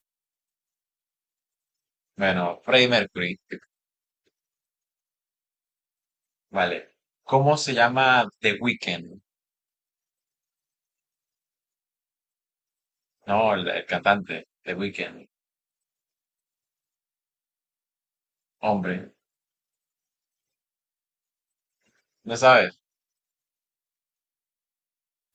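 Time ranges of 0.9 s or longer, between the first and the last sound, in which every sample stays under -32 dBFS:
3.56–6.55
9.01–13.28
15.09–18.63
19.01–22.27

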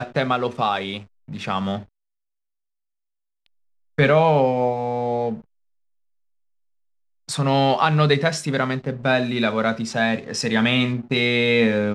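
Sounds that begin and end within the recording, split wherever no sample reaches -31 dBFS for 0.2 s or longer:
1.29–1.8
3.98–5.37

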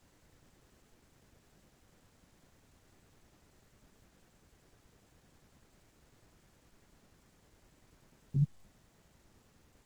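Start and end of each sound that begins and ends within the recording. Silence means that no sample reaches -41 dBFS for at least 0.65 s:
8.34–8.45

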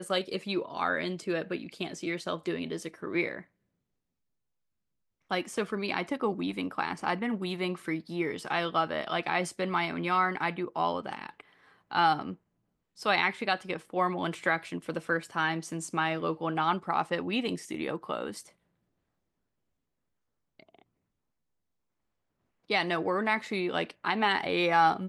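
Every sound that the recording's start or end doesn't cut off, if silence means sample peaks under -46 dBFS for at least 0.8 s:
5.31–18.49
20.6–20.82

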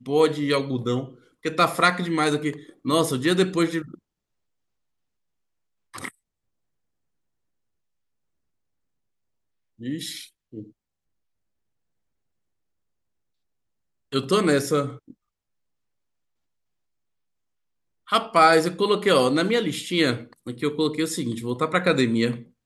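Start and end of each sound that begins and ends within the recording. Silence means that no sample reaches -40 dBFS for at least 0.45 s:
5.94–6.09
9.8–10.67
14.12–15.11

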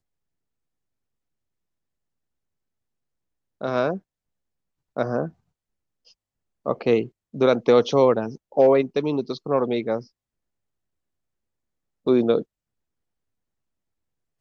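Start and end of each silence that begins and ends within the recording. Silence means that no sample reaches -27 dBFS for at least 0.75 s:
3.97–4.97
5.27–6.66
10–12.07

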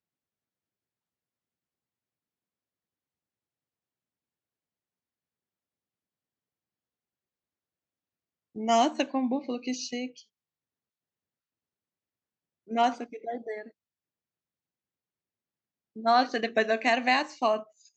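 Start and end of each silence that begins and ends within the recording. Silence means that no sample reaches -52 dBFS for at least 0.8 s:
10.23–12.67
13.71–15.96

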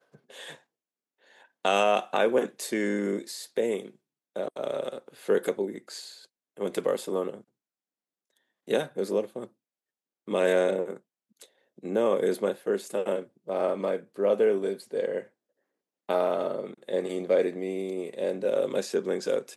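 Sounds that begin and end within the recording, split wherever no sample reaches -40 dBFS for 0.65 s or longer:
1.65–7.41
8.68–9.45
10.28–15.22

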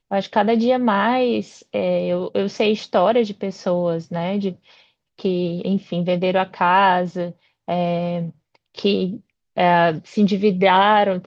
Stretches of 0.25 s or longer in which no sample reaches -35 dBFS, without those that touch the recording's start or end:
4.53–5.19
7.31–7.68
8.3–8.75
9.17–9.57

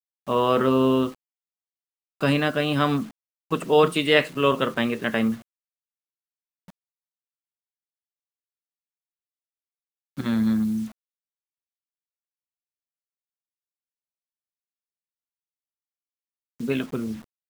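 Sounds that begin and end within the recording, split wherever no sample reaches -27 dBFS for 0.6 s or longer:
2.22–5.34
10.18–10.85

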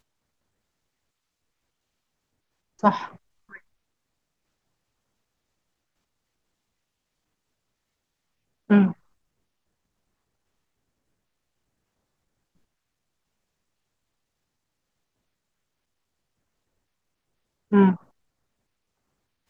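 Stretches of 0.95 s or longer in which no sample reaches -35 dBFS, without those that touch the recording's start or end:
3.56–8.7
8.93–17.72

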